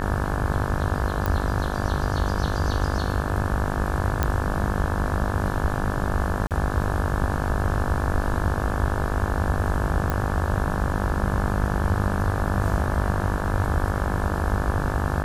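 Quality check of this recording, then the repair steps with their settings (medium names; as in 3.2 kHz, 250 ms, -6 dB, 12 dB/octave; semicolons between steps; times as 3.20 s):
buzz 50 Hz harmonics 35 -28 dBFS
1.26 s: pop
4.23 s: pop -8 dBFS
6.47–6.51 s: dropout 38 ms
10.10 s: pop -12 dBFS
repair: de-click; de-hum 50 Hz, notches 35; interpolate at 6.47 s, 38 ms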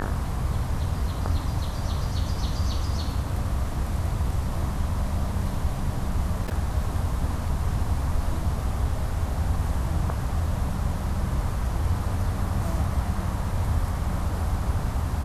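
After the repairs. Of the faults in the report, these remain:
nothing left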